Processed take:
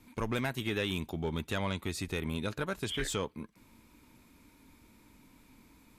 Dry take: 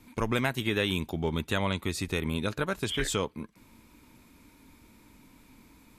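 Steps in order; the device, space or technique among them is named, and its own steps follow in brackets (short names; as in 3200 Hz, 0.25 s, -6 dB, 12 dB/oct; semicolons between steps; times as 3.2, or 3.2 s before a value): saturation between pre-emphasis and de-emphasis (high shelf 5900 Hz +9 dB; soft clip -18.5 dBFS, distortion -18 dB; high shelf 5900 Hz -9 dB); gain -3.5 dB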